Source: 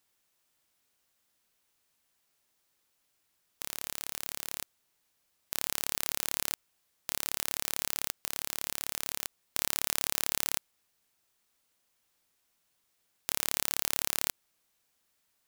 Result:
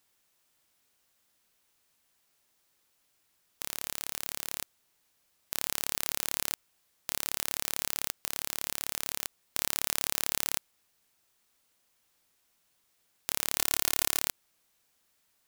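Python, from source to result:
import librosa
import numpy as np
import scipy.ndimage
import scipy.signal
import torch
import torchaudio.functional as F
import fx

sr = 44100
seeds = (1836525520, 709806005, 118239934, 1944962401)

p1 = fx.comb(x, sr, ms=2.8, depth=0.88, at=(13.57, 14.2))
p2 = np.clip(10.0 ** (13.5 / 20.0) * p1, -1.0, 1.0) / 10.0 ** (13.5 / 20.0)
p3 = p1 + (p2 * librosa.db_to_amplitude(-4.5))
y = p3 * librosa.db_to_amplitude(-1.0)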